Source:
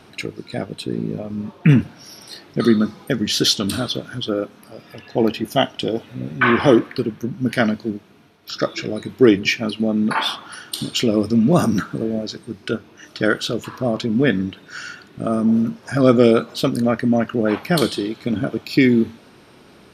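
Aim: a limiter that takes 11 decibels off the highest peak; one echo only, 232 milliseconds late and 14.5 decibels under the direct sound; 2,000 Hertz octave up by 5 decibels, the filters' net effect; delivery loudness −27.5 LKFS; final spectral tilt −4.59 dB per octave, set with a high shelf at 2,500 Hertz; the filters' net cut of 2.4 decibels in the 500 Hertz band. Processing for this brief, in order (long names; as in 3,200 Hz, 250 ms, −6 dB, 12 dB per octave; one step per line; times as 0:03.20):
parametric band 500 Hz −3.5 dB
parametric band 2,000 Hz +4.5 dB
high-shelf EQ 2,500 Hz +5 dB
brickwall limiter −10.5 dBFS
single-tap delay 232 ms −14.5 dB
level −5 dB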